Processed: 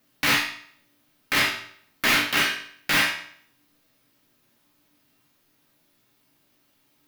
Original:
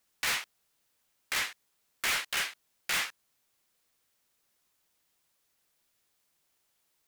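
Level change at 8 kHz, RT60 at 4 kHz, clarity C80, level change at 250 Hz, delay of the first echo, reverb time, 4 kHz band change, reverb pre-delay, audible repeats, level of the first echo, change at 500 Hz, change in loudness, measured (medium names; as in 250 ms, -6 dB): +4.0 dB, 0.55 s, 10.5 dB, +22.0 dB, no echo, 0.60 s, +9.5 dB, 3 ms, no echo, no echo, +13.5 dB, +9.0 dB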